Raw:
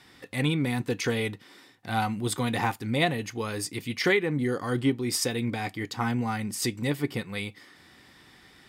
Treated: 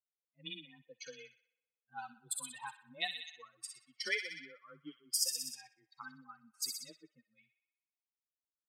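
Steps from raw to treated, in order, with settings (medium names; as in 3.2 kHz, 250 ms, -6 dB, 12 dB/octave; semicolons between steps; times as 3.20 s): expander on every frequency bin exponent 3; treble shelf 6 kHz -9 dB; feedback echo behind a high-pass 62 ms, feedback 74%, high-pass 2.4 kHz, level -5 dB; frequency shift +22 Hz; differentiator; level-controlled noise filter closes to 450 Hz, open at -42 dBFS; trim +5.5 dB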